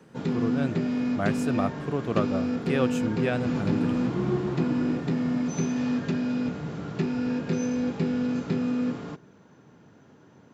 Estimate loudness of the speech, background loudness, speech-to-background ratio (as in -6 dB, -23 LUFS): -31.0 LUFS, -28.0 LUFS, -3.0 dB